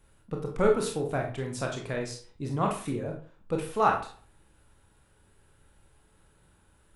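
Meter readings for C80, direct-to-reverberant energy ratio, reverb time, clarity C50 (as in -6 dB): 12.0 dB, 1.0 dB, 0.40 s, 7.0 dB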